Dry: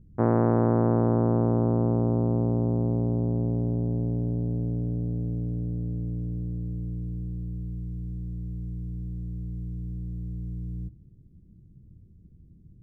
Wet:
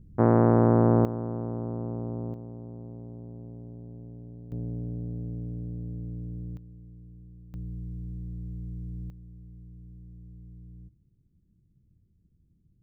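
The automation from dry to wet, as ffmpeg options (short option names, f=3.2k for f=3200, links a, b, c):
-af "asetnsamples=n=441:p=0,asendcmd='1.05 volume volume -9.5dB;2.34 volume volume -16.5dB;4.52 volume volume -5.5dB;6.57 volume volume -15.5dB;7.54 volume volume -3dB;9.1 volume volume -13dB',volume=2dB"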